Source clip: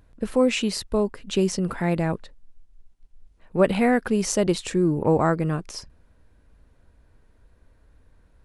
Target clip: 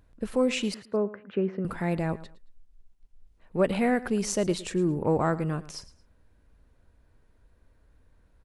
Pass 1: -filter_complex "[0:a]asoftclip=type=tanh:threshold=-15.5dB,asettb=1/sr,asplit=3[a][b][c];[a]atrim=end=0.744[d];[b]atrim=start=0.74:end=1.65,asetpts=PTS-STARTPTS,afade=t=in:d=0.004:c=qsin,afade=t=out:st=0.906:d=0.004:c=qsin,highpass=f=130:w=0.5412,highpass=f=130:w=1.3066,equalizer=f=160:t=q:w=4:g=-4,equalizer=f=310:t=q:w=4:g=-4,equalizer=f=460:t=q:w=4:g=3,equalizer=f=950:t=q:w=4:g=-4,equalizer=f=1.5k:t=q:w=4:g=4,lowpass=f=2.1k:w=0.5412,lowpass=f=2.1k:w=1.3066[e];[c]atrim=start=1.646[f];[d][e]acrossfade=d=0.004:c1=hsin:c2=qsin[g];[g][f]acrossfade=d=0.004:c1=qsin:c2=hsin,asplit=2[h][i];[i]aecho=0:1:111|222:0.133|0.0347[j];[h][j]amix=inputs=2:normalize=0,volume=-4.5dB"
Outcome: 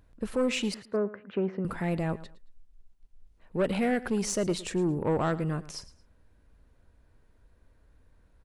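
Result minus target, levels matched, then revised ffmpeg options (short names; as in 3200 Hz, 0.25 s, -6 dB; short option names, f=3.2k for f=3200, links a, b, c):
soft clip: distortion +17 dB
-filter_complex "[0:a]asoftclip=type=tanh:threshold=-4dB,asettb=1/sr,asplit=3[a][b][c];[a]atrim=end=0.744[d];[b]atrim=start=0.74:end=1.65,asetpts=PTS-STARTPTS,afade=t=in:d=0.004:c=qsin,afade=t=out:st=0.906:d=0.004:c=qsin,highpass=f=130:w=0.5412,highpass=f=130:w=1.3066,equalizer=f=160:t=q:w=4:g=-4,equalizer=f=310:t=q:w=4:g=-4,equalizer=f=460:t=q:w=4:g=3,equalizer=f=950:t=q:w=4:g=-4,equalizer=f=1.5k:t=q:w=4:g=4,lowpass=f=2.1k:w=0.5412,lowpass=f=2.1k:w=1.3066[e];[c]atrim=start=1.646[f];[d][e]acrossfade=d=0.004:c1=hsin:c2=qsin[g];[g][f]acrossfade=d=0.004:c1=qsin:c2=hsin,asplit=2[h][i];[i]aecho=0:1:111|222:0.133|0.0347[j];[h][j]amix=inputs=2:normalize=0,volume=-4.5dB"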